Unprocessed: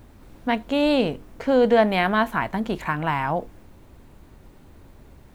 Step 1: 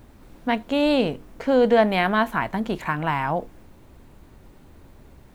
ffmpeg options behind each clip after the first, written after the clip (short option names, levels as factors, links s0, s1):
-af "bandreject=f=50:t=h:w=6,bandreject=f=100:t=h:w=6"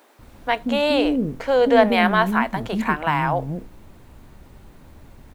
-filter_complex "[0:a]acrossover=split=370[s0][s1];[s0]adelay=190[s2];[s2][s1]amix=inputs=2:normalize=0,volume=1.5"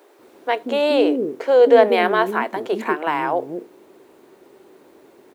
-af "highpass=f=380:t=q:w=4.6,volume=0.794"